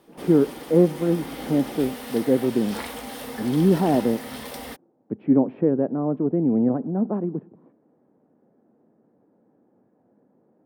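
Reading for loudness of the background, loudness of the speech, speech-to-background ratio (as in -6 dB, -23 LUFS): -35.5 LUFS, -22.5 LUFS, 13.0 dB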